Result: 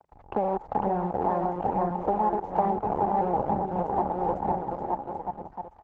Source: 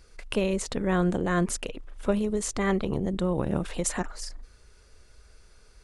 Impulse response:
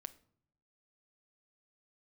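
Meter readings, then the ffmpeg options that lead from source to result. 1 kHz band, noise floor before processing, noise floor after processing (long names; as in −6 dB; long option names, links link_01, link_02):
+12.5 dB, −56 dBFS, −53 dBFS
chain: -af "acrusher=bits=5:dc=4:mix=0:aa=0.000001,aecho=1:1:500|925|1286|1593|1854:0.631|0.398|0.251|0.158|0.1,aphaser=in_gain=1:out_gain=1:delay=3.7:decay=0.31:speed=1.1:type=triangular,highpass=44,bandreject=frequency=50:width_type=h:width=6,bandreject=frequency=100:width_type=h:width=6,bandreject=frequency=150:width_type=h:width=6,acompressor=threshold=-26dB:ratio=20,lowpass=frequency=830:width_type=q:width=10" -ar 48000 -c:a libopus -b:a 12k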